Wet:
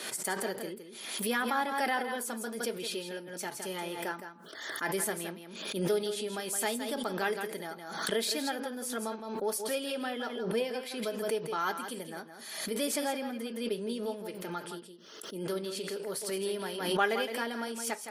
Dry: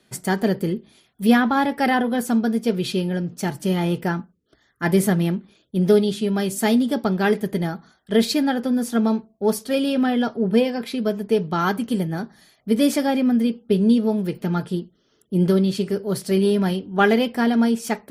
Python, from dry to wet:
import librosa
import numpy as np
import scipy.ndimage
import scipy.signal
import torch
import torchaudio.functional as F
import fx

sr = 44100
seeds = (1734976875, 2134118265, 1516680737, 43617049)

p1 = scipy.signal.sosfilt(scipy.signal.butter(2, 490.0, 'highpass', fs=sr, output='sos'), x)
p2 = fx.peak_eq(p1, sr, hz=9600.0, db=6.0, octaves=0.8)
p3 = fx.notch(p2, sr, hz=720.0, q=12.0)
p4 = p3 + fx.echo_single(p3, sr, ms=165, db=-9.0, dry=0)
p5 = fx.pre_swell(p4, sr, db_per_s=52.0)
y = p5 * librosa.db_to_amplitude(-9.0)